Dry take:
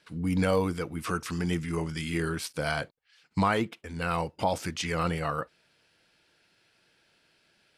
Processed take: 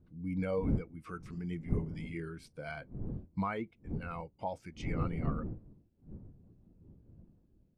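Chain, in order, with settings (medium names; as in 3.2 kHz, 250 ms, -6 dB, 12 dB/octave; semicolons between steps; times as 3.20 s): wind noise 230 Hz -32 dBFS; dynamic bell 2.2 kHz, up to +7 dB, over -54 dBFS, Q 7.8; spectral contrast expander 1.5:1; trim -7.5 dB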